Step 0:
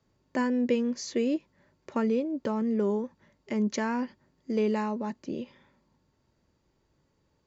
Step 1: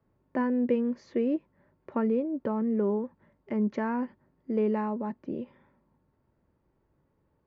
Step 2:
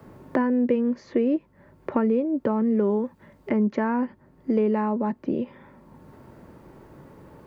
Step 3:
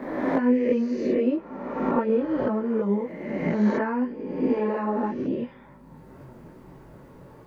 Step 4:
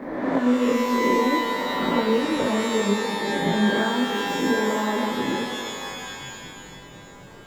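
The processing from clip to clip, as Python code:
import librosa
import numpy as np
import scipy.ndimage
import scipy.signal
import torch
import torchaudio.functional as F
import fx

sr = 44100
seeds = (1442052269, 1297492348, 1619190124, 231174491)

y1 = scipy.signal.sosfilt(scipy.signal.butter(2, 1600.0, 'lowpass', fs=sr, output='sos'), x)
y2 = fx.band_squash(y1, sr, depth_pct=70)
y2 = y2 * 10.0 ** (5.0 / 20.0)
y3 = fx.spec_swells(y2, sr, rise_s=1.46)
y3 = fx.chorus_voices(y3, sr, voices=6, hz=0.67, base_ms=20, depth_ms=4.5, mix_pct=55)
y4 = fx.rev_shimmer(y3, sr, seeds[0], rt60_s=2.3, semitones=12, shimmer_db=-2, drr_db=5.5)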